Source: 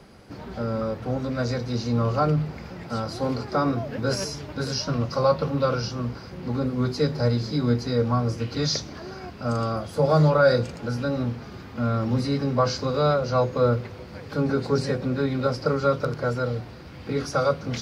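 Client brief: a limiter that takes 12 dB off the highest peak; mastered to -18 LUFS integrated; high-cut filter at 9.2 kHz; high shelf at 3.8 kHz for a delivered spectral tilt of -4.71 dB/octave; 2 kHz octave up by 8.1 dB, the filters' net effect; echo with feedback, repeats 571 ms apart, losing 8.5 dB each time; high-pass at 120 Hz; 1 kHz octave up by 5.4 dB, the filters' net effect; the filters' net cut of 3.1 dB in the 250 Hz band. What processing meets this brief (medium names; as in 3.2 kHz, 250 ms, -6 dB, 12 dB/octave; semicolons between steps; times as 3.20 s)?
high-pass 120 Hz; low-pass 9.2 kHz; peaking EQ 250 Hz -3.5 dB; peaking EQ 1 kHz +3 dB; peaking EQ 2 kHz +9 dB; treble shelf 3.8 kHz +7.5 dB; peak limiter -16.5 dBFS; feedback delay 571 ms, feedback 38%, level -8.5 dB; trim +9 dB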